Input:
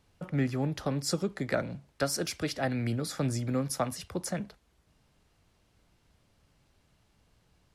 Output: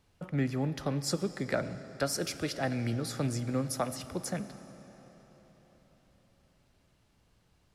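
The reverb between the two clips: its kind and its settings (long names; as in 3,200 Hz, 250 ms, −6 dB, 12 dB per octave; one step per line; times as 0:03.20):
comb and all-pass reverb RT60 4.7 s, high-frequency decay 0.85×, pre-delay 25 ms, DRR 12.5 dB
level −1.5 dB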